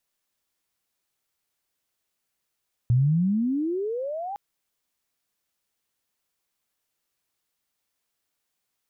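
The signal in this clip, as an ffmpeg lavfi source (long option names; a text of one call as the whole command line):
ffmpeg -f lavfi -i "aevalsrc='pow(10,(-16-14*t/1.46)/20)*sin(2*PI*116*1.46/(34*log(2)/12)*(exp(34*log(2)/12*t/1.46)-1))':duration=1.46:sample_rate=44100" out.wav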